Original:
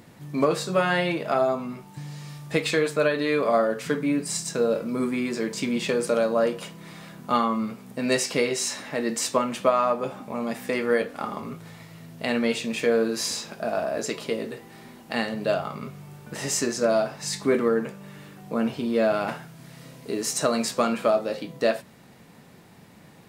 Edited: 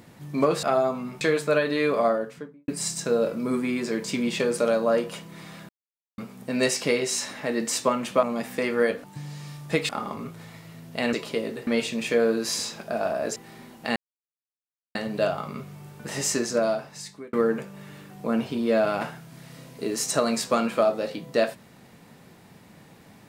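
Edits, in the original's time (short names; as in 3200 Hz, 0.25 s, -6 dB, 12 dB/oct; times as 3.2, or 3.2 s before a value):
0.63–1.27 cut
1.85–2.7 move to 11.15
3.4–4.17 studio fade out
7.18–7.67 mute
9.72–10.34 cut
14.08–14.62 move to 12.39
15.22 insert silence 0.99 s
16.74–17.6 fade out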